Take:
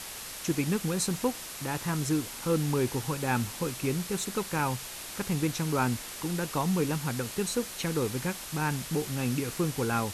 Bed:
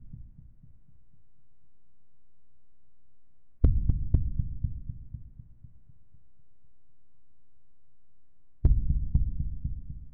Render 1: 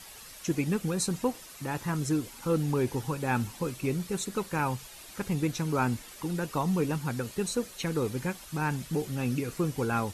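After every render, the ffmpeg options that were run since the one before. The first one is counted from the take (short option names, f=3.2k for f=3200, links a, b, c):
-af "afftdn=nr=10:nf=-41"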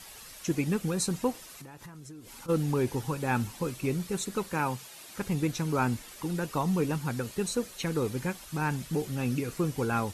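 -filter_complex "[0:a]asplit=3[a][b][c];[a]afade=t=out:st=1.56:d=0.02[d];[b]acompressor=threshold=-42dB:ratio=20:attack=3.2:release=140:knee=1:detection=peak,afade=t=in:st=1.56:d=0.02,afade=t=out:st=2.48:d=0.02[e];[c]afade=t=in:st=2.48:d=0.02[f];[d][e][f]amix=inputs=3:normalize=0,asettb=1/sr,asplit=3[g][h][i];[g]atrim=end=4.534[j];[h]atrim=start=4.53:end=5.15,asetpts=PTS-STARTPTS,afade=t=in:d=0.004:c=qsin,afade=t=out:st=0.616:d=0.004:c=qsin,highpass=130[k];[i]atrim=start=5.146[l];[j][k]acrossfade=d=0.004:c1=hsin:c2=qsin[m];[m][l]acrossfade=d=0.004:c1=qsin:c2=hsin"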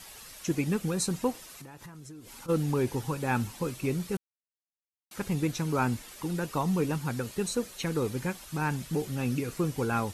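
-filter_complex "[0:a]asplit=3[a][b][c];[a]atrim=end=4.17,asetpts=PTS-STARTPTS,afade=t=out:st=4.166:d=0.004:c=hsin[d];[b]atrim=start=4.17:end=5.11,asetpts=PTS-STARTPTS,volume=0[e];[c]atrim=start=5.11,asetpts=PTS-STARTPTS,afade=t=in:d=0.004:c=hsin[f];[d][e][f]concat=n=3:v=0:a=1"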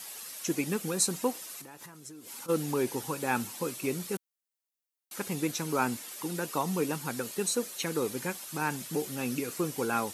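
-af "highpass=230,highshelf=f=6.3k:g=8.5"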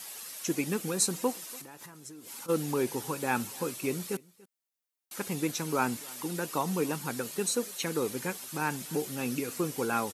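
-af "aecho=1:1:287:0.0668"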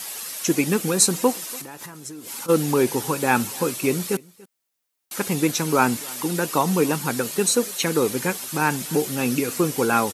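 -af "volume=10dB"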